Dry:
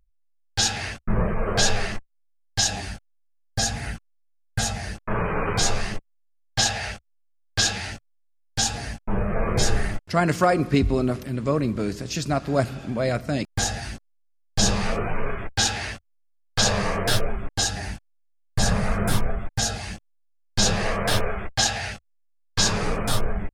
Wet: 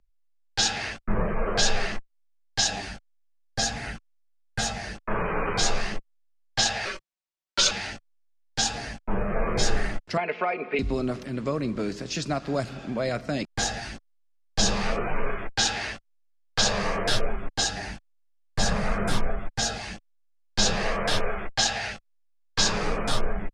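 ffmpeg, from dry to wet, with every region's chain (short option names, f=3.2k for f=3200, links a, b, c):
-filter_complex "[0:a]asettb=1/sr,asplit=3[a][b][c];[a]atrim=end=6.854[d];[b]atrim=start=6.85:end=7.71,asetpts=PTS-STARTPTS,afade=t=in:d=0.004:c=qsin,afade=t=out:st=0.856:d=0.004:c=qsin,highpass=f=130:w=0.5412,highpass=f=130:w=1.3066,aecho=1:1:5.2:0.76,atrim=end_sample=37926,afreqshift=-210[e];[c]atrim=start=7.706[f];[d][e]acrossfade=d=0.004:c1=hsin:c2=qsin[g];[g][f]acrossfade=d=0.004:c1=qsin:c2=hsin,asettb=1/sr,asplit=3[h][i][j];[h]atrim=end=10.174[k];[i]atrim=start=10.17:end=10.79,asetpts=PTS-STARTPTS,afade=t=in:d=0.004:c=qsin,afade=t=out:st=0.616:d=0.004:c=qsin,highpass=440,equalizer=f=470:t=q:w=4:g=7,equalizer=f=770:t=q:w=4:g=6,equalizer=f=1.1k:t=q:w=4:g=-5,equalizer=f=1.6k:t=q:w=4:g=-3,equalizer=f=2.4k:t=q:w=4:g=9,lowpass=f=2.7k:w=0.5412,lowpass=f=2.7k:w=1.3066,aecho=1:1:4.7:0.59,atrim=end_sample=27342[l];[j]atrim=start=10.786[m];[k][l]acrossfade=d=0.004:c1=hsin:c2=qsin[n];[n][m]acrossfade=d=0.004:c1=qsin:c2=hsin,lowpass=6.5k,equalizer=f=83:w=0.91:g=-10.5,acrossover=split=150|3000[o][p][q];[p]acompressor=threshold=-24dB:ratio=6[r];[o][r][q]amix=inputs=3:normalize=0"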